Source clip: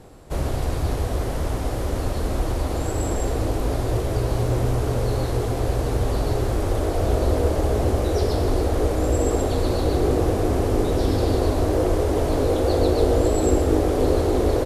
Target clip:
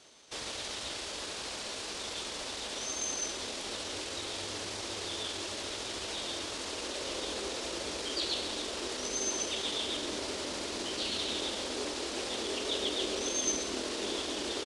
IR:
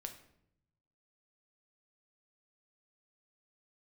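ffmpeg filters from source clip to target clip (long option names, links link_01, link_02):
-af "bandpass=frequency=5300:width_type=q:width=1.1:csg=0,asetrate=36028,aresample=44100,atempo=1.22405,volume=5.5dB"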